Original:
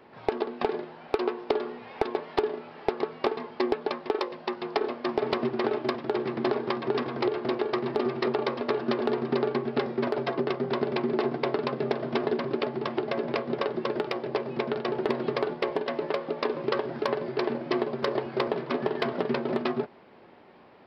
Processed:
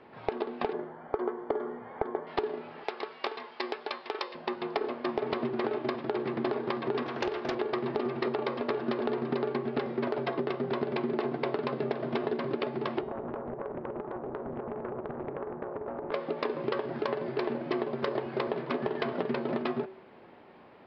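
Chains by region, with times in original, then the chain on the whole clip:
0.73–2.27 polynomial smoothing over 41 samples + short-mantissa float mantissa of 6-bit
2.84–4.35 HPF 1100 Hz 6 dB/oct + high shelf 4100 Hz +8.5 dB
7.06–7.55 tilt +2 dB/oct + Doppler distortion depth 0.34 ms
13.01–16.12 LPF 1200 Hz 24 dB/oct + compressor, threshold -32 dBFS + Doppler distortion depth 0.86 ms
whole clip: LPF 4100 Hz 12 dB/oct; de-hum 190 Hz, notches 28; compressor 2.5:1, threshold -28 dBFS

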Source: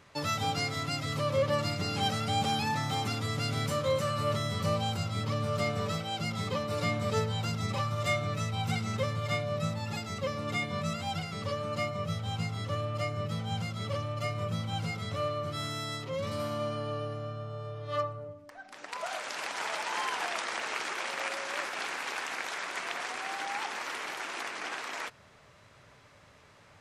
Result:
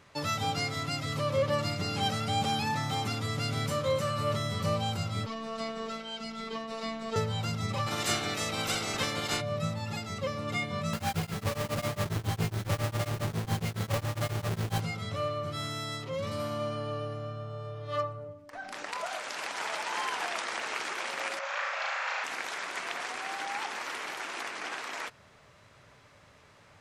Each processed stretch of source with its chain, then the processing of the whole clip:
5.26–7.16 three-band isolator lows -15 dB, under 180 Hz, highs -15 dB, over 7700 Hz + robotiser 224 Hz
7.86–9.4 spectral limiter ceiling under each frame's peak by 24 dB + notch 1000 Hz, Q 16
10.93–14.81 half-waves squared off + beating tremolo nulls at 7.3 Hz
18.53–19.06 doubler 26 ms -11.5 dB + fast leveller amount 50%
21.39–22.24 formant sharpening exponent 1.5 + Chebyshev band-pass 540–7200 Hz, order 4 + flutter echo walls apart 6.2 m, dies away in 0.86 s
whole clip: dry

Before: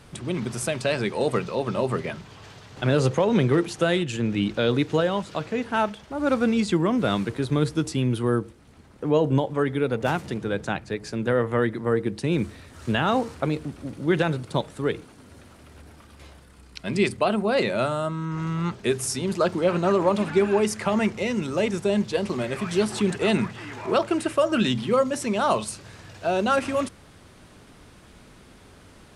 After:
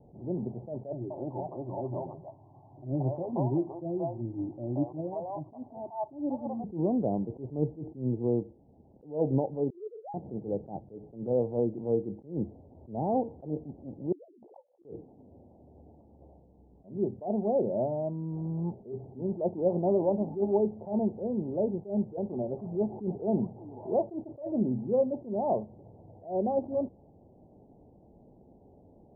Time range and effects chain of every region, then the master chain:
0.92–6.64 bell 1100 Hz +14.5 dB 0.43 oct + fixed phaser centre 310 Hz, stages 8 + three bands offset in time lows, highs, mids 90/180 ms, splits 540/1800 Hz
9.7–10.14 sine-wave speech + fixed phaser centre 1100 Hz, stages 6
14.12–14.85 sine-wave speech + doubler 14 ms -9 dB + flipped gate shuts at -23 dBFS, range -25 dB
whole clip: steep low-pass 840 Hz 72 dB/oct; low shelf 89 Hz -9.5 dB; attack slew limiter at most 170 dB/s; gain -3.5 dB

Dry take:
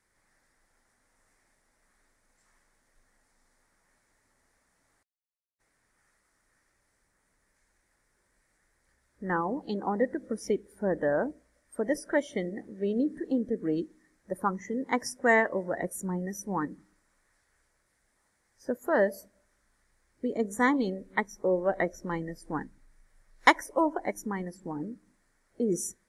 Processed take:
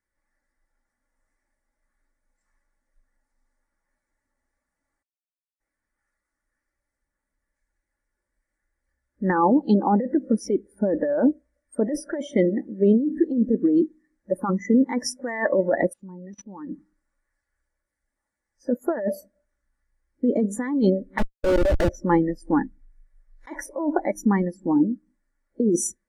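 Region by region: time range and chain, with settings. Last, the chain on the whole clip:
15.93–16.69 CVSD 64 kbps + LPF 4300 Hz + level quantiser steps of 23 dB
21.18–21.89 notches 60/120/180/240/300/360/420/480/540 Hz + Schmitt trigger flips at -32 dBFS + Doppler distortion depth 0.76 ms
whole clip: comb 3.5 ms, depth 32%; negative-ratio compressor -30 dBFS, ratio -1; spectral expander 1.5:1; gain +8 dB

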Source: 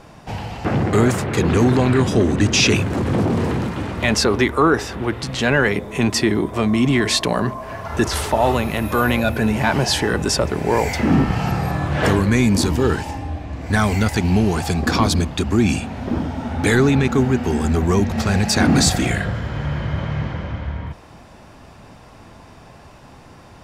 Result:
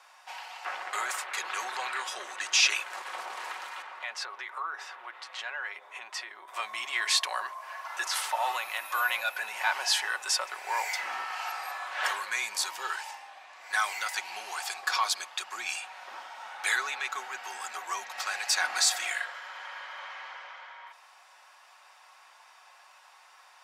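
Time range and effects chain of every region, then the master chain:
3.82–6.48 LPF 1800 Hz 6 dB/oct + short-mantissa float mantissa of 8-bit + compressor 3:1, threshold -22 dBFS
whole clip: HPF 890 Hz 24 dB/oct; comb 5.4 ms, depth 41%; gain -6.5 dB

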